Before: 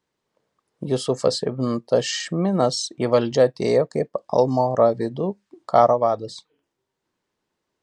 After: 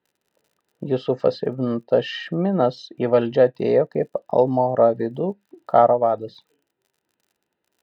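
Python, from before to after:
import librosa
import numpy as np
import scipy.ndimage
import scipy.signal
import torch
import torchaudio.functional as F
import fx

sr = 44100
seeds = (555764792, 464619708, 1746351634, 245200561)

y = scipy.signal.sosfilt(scipy.signal.butter(4, 3300.0, 'lowpass', fs=sr, output='sos'), x)
y = fx.dmg_crackle(y, sr, seeds[0], per_s=49.0, level_db=-49.0)
y = fx.notch_comb(y, sr, f0_hz=1100.0)
y = y * librosa.db_to_amplitude(1.0)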